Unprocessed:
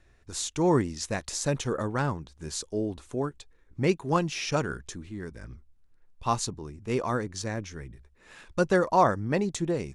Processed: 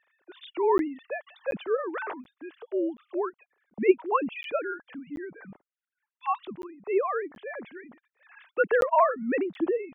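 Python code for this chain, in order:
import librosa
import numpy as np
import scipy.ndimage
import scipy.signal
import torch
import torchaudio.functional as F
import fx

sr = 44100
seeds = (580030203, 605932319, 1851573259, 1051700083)

y = fx.sine_speech(x, sr)
y = fx.buffer_crackle(y, sr, first_s=0.78, period_s=0.73, block=512, kind='zero')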